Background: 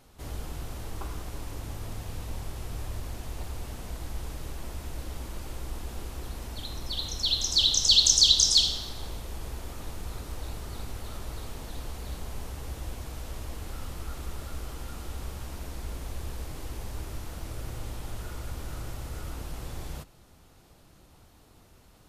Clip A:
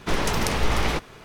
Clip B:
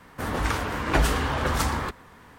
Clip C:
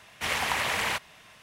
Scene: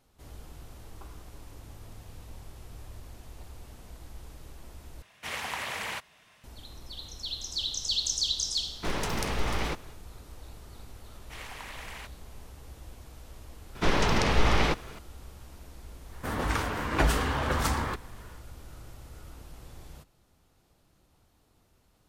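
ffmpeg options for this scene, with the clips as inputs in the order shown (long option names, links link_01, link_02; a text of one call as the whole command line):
ffmpeg -i bed.wav -i cue0.wav -i cue1.wav -i cue2.wav -filter_complex "[3:a]asplit=2[link_01][link_02];[1:a]asplit=2[link_03][link_04];[0:a]volume=-9.5dB[link_05];[link_04]acrossover=split=6500[link_06][link_07];[link_07]acompressor=threshold=-52dB:ratio=4:attack=1:release=60[link_08];[link_06][link_08]amix=inputs=2:normalize=0[link_09];[link_05]asplit=2[link_10][link_11];[link_10]atrim=end=5.024[link_12];[link_01]atrim=end=1.42,asetpts=PTS-STARTPTS,volume=-7dB[link_13];[link_11]atrim=start=6.436[link_14];[link_03]atrim=end=1.24,asetpts=PTS-STARTPTS,volume=-7dB,afade=type=in:duration=0.1,afade=type=out:start_time=1.14:duration=0.1,adelay=8760[link_15];[link_02]atrim=end=1.42,asetpts=PTS-STARTPTS,volume=-15.5dB,afade=type=in:duration=0.004:curve=hsin,afade=type=out:start_time=1.416:duration=0.004:curve=hsin,adelay=11090[link_16];[link_09]atrim=end=1.24,asetpts=PTS-STARTPTS,volume=-0.5dB,afade=type=in:duration=0.004:curve=hsin,afade=type=out:start_time=1.236:duration=0.004:curve=hsin,adelay=13750[link_17];[2:a]atrim=end=2.38,asetpts=PTS-STARTPTS,volume=-3dB,afade=type=in:duration=0.1,afade=type=out:start_time=2.28:duration=0.1,adelay=16050[link_18];[link_12][link_13]acrossfade=duration=0.004:curve1=hsin:curve2=hsin[link_19];[link_19][link_14]acrossfade=duration=0.004:curve1=hsin:curve2=hsin[link_20];[link_20][link_15][link_16][link_17][link_18]amix=inputs=5:normalize=0" out.wav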